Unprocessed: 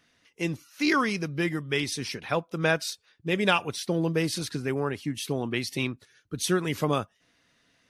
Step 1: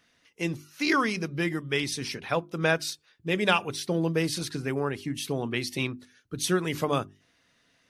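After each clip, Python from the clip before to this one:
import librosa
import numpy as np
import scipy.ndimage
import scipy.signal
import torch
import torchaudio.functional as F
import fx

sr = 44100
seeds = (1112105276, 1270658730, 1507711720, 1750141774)

y = fx.hum_notches(x, sr, base_hz=50, count=8)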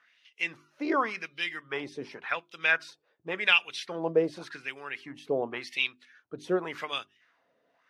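y = fx.wah_lfo(x, sr, hz=0.89, low_hz=530.0, high_hz=3200.0, q=2.4)
y = y * librosa.db_to_amplitude(7.0)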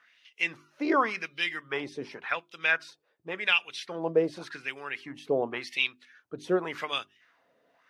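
y = fx.rider(x, sr, range_db=4, speed_s=2.0)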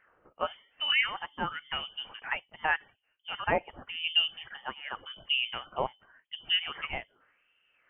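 y = fx.freq_invert(x, sr, carrier_hz=3300)
y = y * librosa.db_to_amplitude(-2.5)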